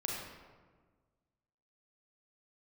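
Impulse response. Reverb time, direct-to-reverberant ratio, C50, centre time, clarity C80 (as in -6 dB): 1.5 s, -2.5 dB, -0.5 dB, 79 ms, 2.0 dB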